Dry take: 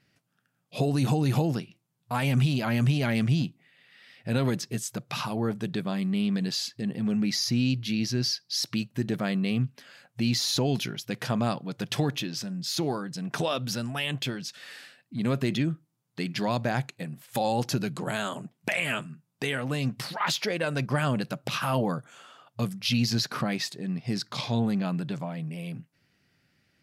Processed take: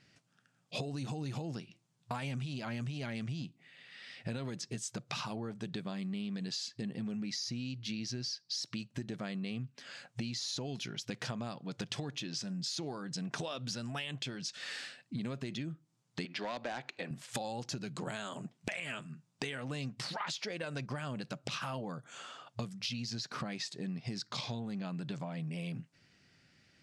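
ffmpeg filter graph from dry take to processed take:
-filter_complex "[0:a]asettb=1/sr,asplit=3[s0][s1][s2];[s0]atrim=end=16.254[s3];[s1]atrim=start=16.25:end=17.11,asetpts=PTS-STARTPTS,afade=t=in:d=0.004:c=qsin,afade=t=out:st=0.856:d=0.004:c=qsin,acrossover=split=260 4600:gain=0.0794 1 0.0891[s4][s5][s6];[s4][s5][s6]amix=inputs=3:normalize=0,asoftclip=type=hard:threshold=0.0531,acompressor=mode=upward:threshold=0.0178:ratio=2.5:attack=3.2:release=140:knee=2.83:detection=peak[s7];[s2]atrim=start=17.106[s8];[s3][s7]acrossfade=d=0.004:c1=hsin:c2=qsin[s9];[s9][s8]acrossfade=d=0.004:c1=qsin:c2=hsin,lowpass=f=8000:w=0.5412,lowpass=f=8000:w=1.3066,highshelf=f=4500:g=6.5,acompressor=threshold=0.0141:ratio=16,volume=1.19"

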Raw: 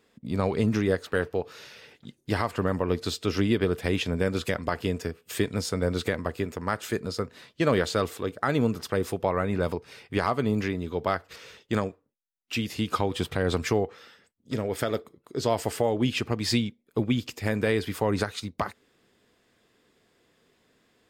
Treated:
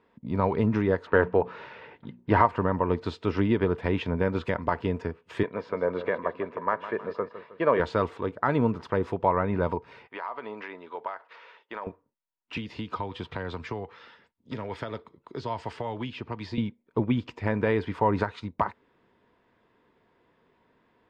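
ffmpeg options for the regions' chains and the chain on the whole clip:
-filter_complex "[0:a]asettb=1/sr,asplit=3[s0][s1][s2];[s0]atrim=end=1.084[s3];[s1]atrim=start=1.08:end=2.46,asetpts=PTS-STARTPTS,afade=t=in:d=0.004:c=qsin,afade=t=out:st=1.376:d=0.004:c=qsin,bass=f=250:g=-2,treble=f=4000:g=-12,bandreject=f=60:t=h:w=6,bandreject=f=120:t=h:w=6,bandreject=f=180:t=h:w=6,bandreject=f=240:t=h:w=6,acontrast=47[s4];[s2]atrim=start=2.456[s5];[s3][s4]acrossfade=d=0.004:c1=hsin:c2=qsin[s6];[s6][s5]acrossfade=d=0.004:c1=qsin:c2=hsin,asettb=1/sr,asplit=3[s7][s8][s9];[s7]atrim=end=5.434[s10];[s8]atrim=start=5.43:end=7.8,asetpts=PTS-STARTPTS,afade=t=in:d=0.004:c=qsin,afade=t=out:st=2.366:d=0.004:c=qsin,highpass=270,lowpass=2700,aecho=1:1:1.8:0.36,atrim=end_sample=104517,aecho=1:1:157|314|471|628|785:0.224|0.103|0.0474|0.0218|0.01,atrim=end_sample=104517[s11];[s9]atrim=start=7.796[s12];[s10][s11]acrossfade=d=0.004:c1=hsin:c2=qsin[s13];[s13][s12]acrossfade=d=0.004:c1=qsin:c2=hsin,asettb=1/sr,asplit=3[s14][s15][s16];[s14]atrim=end=10.074[s17];[s15]atrim=start=10.07:end=11.87,asetpts=PTS-STARTPTS,afade=t=in:d=0.004:c=qsin,afade=t=out:st=1.796:d=0.004:c=qsin,highpass=650,lowpass=4600,acompressor=threshold=0.0282:ratio=10:attack=3.2:release=140:knee=1:detection=peak[s18];[s16]atrim=start=11.866[s19];[s17][s18]acrossfade=d=0.004:c1=hsin:c2=qsin[s20];[s20][s19]acrossfade=d=0.004:c1=qsin:c2=hsin,asettb=1/sr,asplit=3[s21][s22][s23];[s21]atrim=end=12.574[s24];[s22]atrim=start=12.57:end=16.58,asetpts=PTS-STARTPTS,afade=t=in:d=0.004:c=qsin,afade=t=out:st=4.006:d=0.004:c=qsin,equalizer=f=4400:t=o:w=1.7:g=8,acrossover=split=190|930[s25][s26][s27];[s25]acompressor=threshold=0.0112:ratio=4[s28];[s26]acompressor=threshold=0.0141:ratio=4[s29];[s27]acompressor=threshold=0.0158:ratio=4[s30];[s28][s29][s30]amix=inputs=3:normalize=0[s31];[s23]atrim=start=16.576[s32];[s24][s31]acrossfade=d=0.004:c1=hsin:c2=qsin[s33];[s33][s32]acrossfade=d=0.004:c1=qsin:c2=hsin,lowpass=2200,equalizer=f=940:t=o:w=0.25:g=12,bandreject=f=810:w=20"

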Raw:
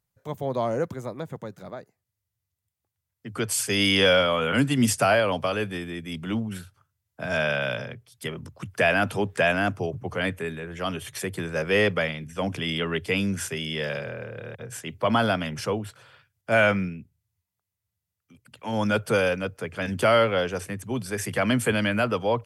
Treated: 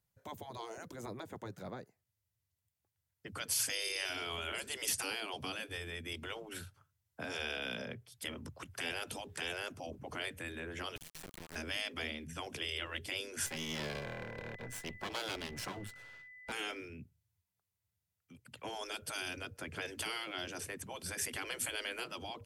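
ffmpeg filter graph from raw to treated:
-filter_complex "[0:a]asettb=1/sr,asplit=3[s0][s1][s2];[s0]atrim=end=10.964[s3];[s1]atrim=start=10.96:end=11.56,asetpts=PTS-STARTPTS,afade=t=in:d=0.004:c=qsin,afade=t=out:st=0.596:d=0.004:c=qsin,tremolo=f=160:d=0.71,acompressor=threshold=0.0112:ratio=8:attack=3.2:release=140:knee=1:detection=peak,acrusher=bits=4:dc=4:mix=0:aa=0.000001[s4];[s2]atrim=start=11.556[s5];[s3][s4]acrossfade=d=0.004:c1=hsin:c2=qsin[s6];[s6][s5]acrossfade=d=0.004:c1=qsin:c2=hsin,asettb=1/sr,asplit=3[s7][s8][s9];[s7]atrim=end=13.464[s10];[s8]atrim=start=13.46:end=16.52,asetpts=PTS-STARTPTS,afade=t=in:d=0.004:c=qsin,afade=t=out:st=3.056:d=0.004:c=qsin,aeval=exprs='max(val(0),0)':c=same,aeval=exprs='val(0)+0.00355*sin(2*PI*2000*n/s)':c=same[s11];[s9]atrim=start=16.516[s12];[s10][s11]acrossfade=d=0.004:c1=hsin:c2=qsin[s13];[s13][s12]acrossfade=d=0.004:c1=qsin:c2=hsin,acrossover=split=420|3000[s14][s15][s16];[s15]acompressor=threshold=0.0126:ratio=5[s17];[s14][s17][s16]amix=inputs=3:normalize=0,bandreject=f=1200:w=19,afftfilt=real='re*lt(hypot(re,im),0.0891)':imag='im*lt(hypot(re,im),0.0891)':win_size=1024:overlap=0.75,volume=0.708"

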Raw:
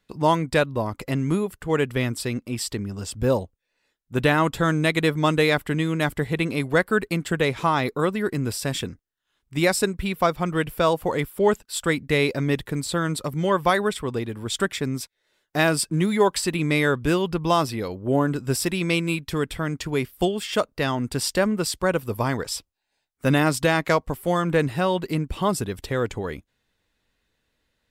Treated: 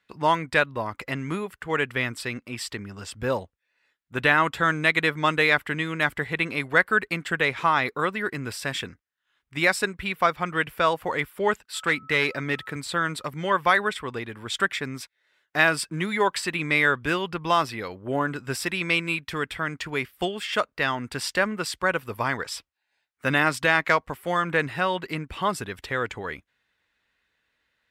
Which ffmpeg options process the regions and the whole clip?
-filter_complex "[0:a]asettb=1/sr,asplit=3[s0][s1][s2];[s0]atrim=end=11.744[s3];[s1]atrim=start=11.74:end=12.76,asetpts=PTS-STARTPTS,afade=t=in:d=0.004:c=qsin,afade=t=out:st=1.016:d=0.004:c=qsin,highpass=87,volume=5.31,asoftclip=hard,volume=0.188,aeval=exprs='val(0)+0.00316*sin(2*PI*1300*n/s)':c=same[s4];[s2]atrim=start=12.756[s5];[s3][s4]acrossfade=d=0.004:c1=hsin:c2=qsin[s6];[s6][s5]acrossfade=d=0.004:c1=qsin:c2=hsin,highpass=43,equalizer=f=1800:w=0.54:g=13.5,volume=0.376"

